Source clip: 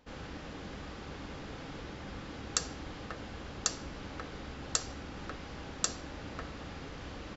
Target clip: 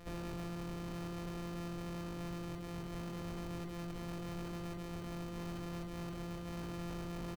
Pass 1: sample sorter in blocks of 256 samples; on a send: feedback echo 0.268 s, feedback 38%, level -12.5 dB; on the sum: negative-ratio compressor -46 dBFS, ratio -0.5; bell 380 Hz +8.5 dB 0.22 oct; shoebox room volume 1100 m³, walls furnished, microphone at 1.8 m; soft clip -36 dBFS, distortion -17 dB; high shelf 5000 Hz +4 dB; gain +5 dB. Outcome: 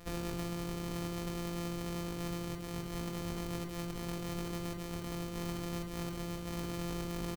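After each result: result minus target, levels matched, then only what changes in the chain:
soft clip: distortion -8 dB; 8000 Hz band +5.5 dB
change: soft clip -44 dBFS, distortion -9 dB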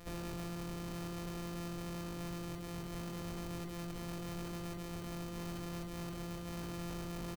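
8000 Hz band +5.0 dB
change: high shelf 5000 Hz -3.5 dB

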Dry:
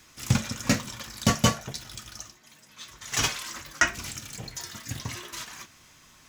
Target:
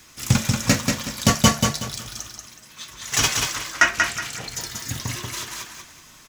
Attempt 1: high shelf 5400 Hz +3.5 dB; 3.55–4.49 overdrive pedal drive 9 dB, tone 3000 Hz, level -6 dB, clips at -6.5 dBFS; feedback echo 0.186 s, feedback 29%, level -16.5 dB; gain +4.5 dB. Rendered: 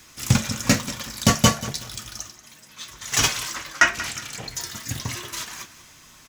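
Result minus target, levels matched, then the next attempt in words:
echo-to-direct -12 dB
high shelf 5400 Hz +3.5 dB; 3.55–4.49 overdrive pedal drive 9 dB, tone 3000 Hz, level -6 dB, clips at -6.5 dBFS; feedback echo 0.186 s, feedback 29%, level -4.5 dB; gain +4.5 dB

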